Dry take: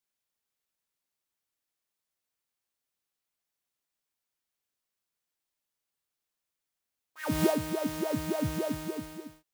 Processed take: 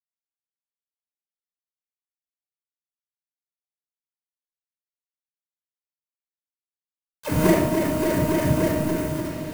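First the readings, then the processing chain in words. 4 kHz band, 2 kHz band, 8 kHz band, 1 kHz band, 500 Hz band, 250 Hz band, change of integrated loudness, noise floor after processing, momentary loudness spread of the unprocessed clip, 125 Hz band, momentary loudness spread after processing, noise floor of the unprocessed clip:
+5.5 dB, +9.5 dB, +7.5 dB, +9.5 dB, +9.0 dB, +9.5 dB, +9.5 dB, below −85 dBFS, 12 LU, +12.0 dB, 8 LU, below −85 dBFS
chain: gap after every zero crossing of 0.29 ms
low-shelf EQ 100 Hz −5 dB
bit reduction 7 bits
feedback delay with all-pass diffusion 662 ms, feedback 44%, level −10.5 dB
rectangular room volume 2,800 cubic metres, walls furnished, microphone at 5.1 metres
dynamic equaliser 3,800 Hz, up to −6 dB, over −47 dBFS, Q 0.93
level +4.5 dB

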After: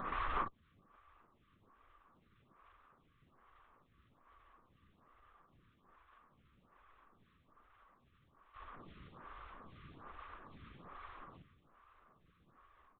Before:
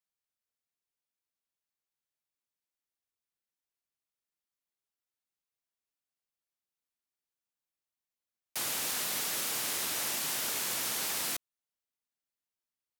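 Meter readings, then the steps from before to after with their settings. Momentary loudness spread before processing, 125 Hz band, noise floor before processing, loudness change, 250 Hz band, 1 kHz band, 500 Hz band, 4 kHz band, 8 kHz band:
4 LU, −1.0 dB, below −85 dBFS, −16.5 dB, −7.0 dB, −0.5 dB, −9.0 dB, −26.0 dB, below −40 dB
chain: compressor on every frequency bin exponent 0.2
in parallel at −4 dB: soft clipping −28 dBFS, distortion −11 dB
on the sum: slap from a distant wall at 18 metres, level −13 dB
bit reduction 5 bits
automatic gain control gain up to 10.5 dB
gate with flip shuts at −18 dBFS, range −38 dB
pair of resonant band-passes 630 Hz, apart 1.7 octaves
double-tracking delay 44 ms −2 dB
linear-prediction vocoder at 8 kHz whisper
phaser with staggered stages 1.2 Hz
level +18 dB

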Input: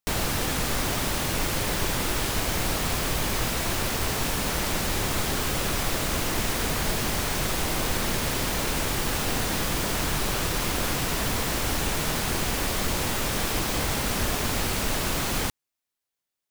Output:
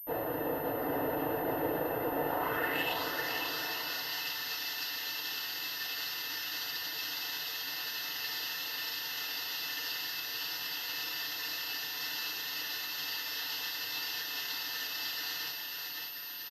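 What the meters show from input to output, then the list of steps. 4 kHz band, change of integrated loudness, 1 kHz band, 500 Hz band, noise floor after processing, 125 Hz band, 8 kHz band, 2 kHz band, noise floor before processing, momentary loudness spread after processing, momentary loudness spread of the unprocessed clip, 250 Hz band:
−5.0 dB, −8.5 dB, −9.0 dB, −7.0 dB, −40 dBFS, −21.5 dB, −15.5 dB, −6.5 dB, below −85 dBFS, 2 LU, 0 LU, −12.0 dB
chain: gate on every frequency bin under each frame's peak −30 dB strong
bass and treble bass +6 dB, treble −6 dB
soft clipping −26.5 dBFS, distortion −9 dB
hollow resonant body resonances 1,800/2,700 Hz, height 9 dB, ringing for 20 ms
band-pass filter sweep 550 Hz → 4,800 Hz, 0:02.20–0:03.04
Butterworth band-reject 2,300 Hz, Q 6.4
bouncing-ball delay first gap 550 ms, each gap 0.8×, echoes 5
feedback delay network reverb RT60 0.31 s, low-frequency decay 0.7×, high-frequency decay 0.8×, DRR −10 dB
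switching amplifier with a slow clock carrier 13,000 Hz
level −3 dB

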